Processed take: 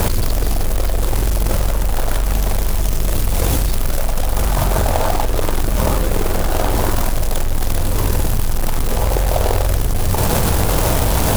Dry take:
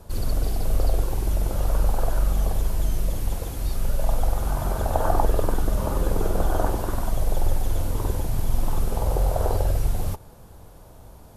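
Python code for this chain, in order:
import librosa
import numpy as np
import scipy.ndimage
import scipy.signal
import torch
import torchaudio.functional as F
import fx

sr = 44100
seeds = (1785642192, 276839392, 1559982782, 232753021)

y = fx.quant_companded(x, sr, bits=4)
y = fx.env_flatten(y, sr, amount_pct=100)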